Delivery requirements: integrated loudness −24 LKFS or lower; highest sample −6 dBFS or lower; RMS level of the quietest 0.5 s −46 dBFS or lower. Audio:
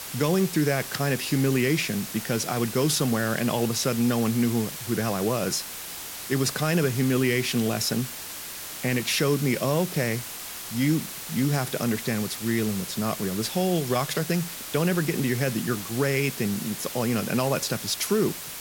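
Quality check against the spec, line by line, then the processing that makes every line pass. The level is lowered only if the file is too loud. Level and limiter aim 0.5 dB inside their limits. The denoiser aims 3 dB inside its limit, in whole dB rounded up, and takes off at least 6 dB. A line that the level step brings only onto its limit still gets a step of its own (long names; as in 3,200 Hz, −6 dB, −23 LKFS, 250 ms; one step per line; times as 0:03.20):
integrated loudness −25.5 LKFS: in spec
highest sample −11.5 dBFS: in spec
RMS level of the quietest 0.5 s −37 dBFS: out of spec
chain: broadband denoise 12 dB, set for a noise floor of −37 dBFS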